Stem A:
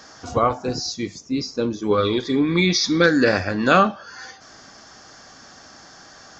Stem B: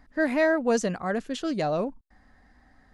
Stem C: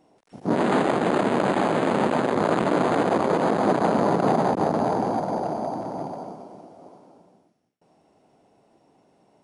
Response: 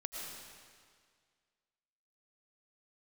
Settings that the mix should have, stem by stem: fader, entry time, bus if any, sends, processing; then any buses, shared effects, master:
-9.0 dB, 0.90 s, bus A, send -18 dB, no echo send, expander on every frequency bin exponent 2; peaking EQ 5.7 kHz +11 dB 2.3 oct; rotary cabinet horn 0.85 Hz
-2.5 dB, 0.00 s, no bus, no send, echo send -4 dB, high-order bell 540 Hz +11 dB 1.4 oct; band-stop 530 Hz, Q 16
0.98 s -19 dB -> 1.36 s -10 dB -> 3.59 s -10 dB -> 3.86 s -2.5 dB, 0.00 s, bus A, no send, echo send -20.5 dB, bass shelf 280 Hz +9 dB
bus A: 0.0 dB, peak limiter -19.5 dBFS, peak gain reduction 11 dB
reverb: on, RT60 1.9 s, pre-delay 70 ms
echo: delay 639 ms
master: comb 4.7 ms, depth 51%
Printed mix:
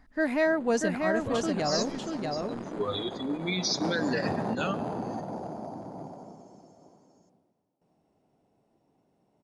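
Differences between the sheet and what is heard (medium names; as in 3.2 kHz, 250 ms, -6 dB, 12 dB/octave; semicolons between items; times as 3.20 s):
stem B: missing high-order bell 540 Hz +11 dB 1.4 oct; stem C -19.0 dB -> -29.5 dB; master: missing comb 4.7 ms, depth 51%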